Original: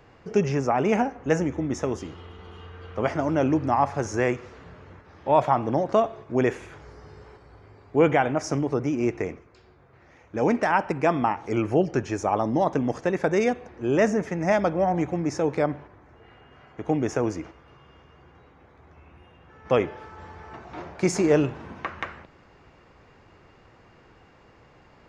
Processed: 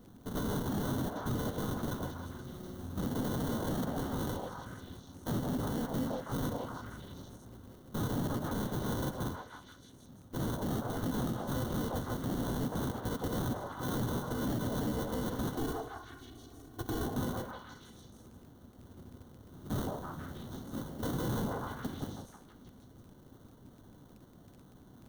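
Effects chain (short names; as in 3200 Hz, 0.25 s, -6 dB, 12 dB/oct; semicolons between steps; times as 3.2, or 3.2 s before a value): FFT order left unsorted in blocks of 256 samples; sample-rate reducer 2500 Hz, jitter 0%; graphic EQ 125/250/500/1000/2000/4000/8000 Hz +8/+9/-6/-7/-12/-5/-7 dB; crackle 17/s -45 dBFS; 15.57–17.06 comb 2.7 ms, depth 80%; on a send: delay with a stepping band-pass 0.16 s, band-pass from 660 Hz, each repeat 0.7 oct, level -6 dB; on the sum: limiter -23.5 dBFS, peak gain reduction 19.5 dB; gain -2.5 dB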